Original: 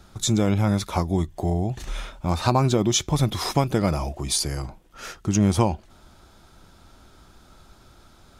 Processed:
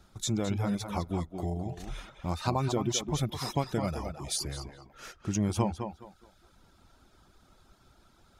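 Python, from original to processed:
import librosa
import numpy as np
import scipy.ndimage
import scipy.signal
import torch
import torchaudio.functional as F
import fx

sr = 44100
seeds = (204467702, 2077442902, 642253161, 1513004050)

y = fx.echo_tape(x, sr, ms=210, feedback_pct=30, wet_db=-5.0, lp_hz=3500.0, drive_db=2.0, wow_cents=30)
y = fx.dereverb_blind(y, sr, rt60_s=0.62)
y = y * 10.0 ** (-8.5 / 20.0)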